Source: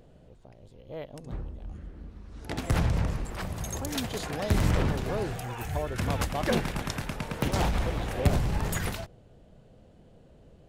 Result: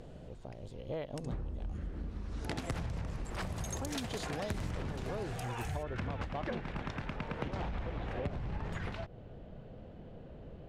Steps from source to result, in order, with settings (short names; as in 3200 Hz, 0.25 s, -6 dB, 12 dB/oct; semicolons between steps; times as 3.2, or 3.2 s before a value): compressor 10:1, threshold -40 dBFS, peak gain reduction 23 dB; LPF 10000 Hz 12 dB/oct, from 5.83 s 2900 Hz; gain +5.5 dB